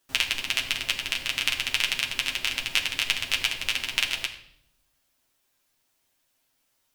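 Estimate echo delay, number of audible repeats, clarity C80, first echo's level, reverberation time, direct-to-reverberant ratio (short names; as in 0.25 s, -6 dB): none, none, 12.0 dB, none, 0.70 s, -1.5 dB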